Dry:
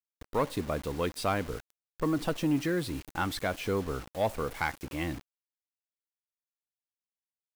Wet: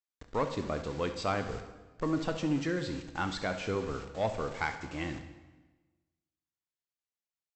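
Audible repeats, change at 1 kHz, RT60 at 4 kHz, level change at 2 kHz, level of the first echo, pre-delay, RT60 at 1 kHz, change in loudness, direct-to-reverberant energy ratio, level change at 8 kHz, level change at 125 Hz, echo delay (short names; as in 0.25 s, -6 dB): 1, -2.0 dB, 1.0 s, -1.5 dB, -14.5 dB, 12 ms, 1.2 s, -2.0 dB, 7.5 dB, -4.5 dB, -2.0 dB, 69 ms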